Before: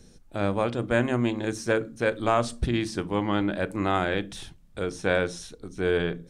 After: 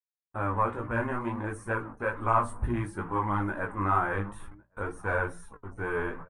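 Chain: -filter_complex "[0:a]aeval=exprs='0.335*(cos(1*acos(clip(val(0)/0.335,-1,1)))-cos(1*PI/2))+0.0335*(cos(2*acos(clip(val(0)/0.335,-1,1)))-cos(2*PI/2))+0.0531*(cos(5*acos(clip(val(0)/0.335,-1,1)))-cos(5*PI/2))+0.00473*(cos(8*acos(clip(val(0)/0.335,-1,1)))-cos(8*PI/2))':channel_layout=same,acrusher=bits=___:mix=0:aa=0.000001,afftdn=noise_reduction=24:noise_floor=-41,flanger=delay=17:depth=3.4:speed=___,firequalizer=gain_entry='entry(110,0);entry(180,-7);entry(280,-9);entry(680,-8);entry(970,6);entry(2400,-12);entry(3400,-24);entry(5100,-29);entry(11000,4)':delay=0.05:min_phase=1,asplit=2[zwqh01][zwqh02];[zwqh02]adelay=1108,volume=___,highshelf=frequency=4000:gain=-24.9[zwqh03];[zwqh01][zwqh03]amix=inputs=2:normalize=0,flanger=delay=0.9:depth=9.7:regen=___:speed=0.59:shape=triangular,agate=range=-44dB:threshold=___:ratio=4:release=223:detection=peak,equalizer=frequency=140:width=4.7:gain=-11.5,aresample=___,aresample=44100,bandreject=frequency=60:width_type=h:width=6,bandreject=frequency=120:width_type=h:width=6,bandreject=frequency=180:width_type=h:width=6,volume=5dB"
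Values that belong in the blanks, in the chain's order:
5, 2.2, -26dB, 64, -56dB, 22050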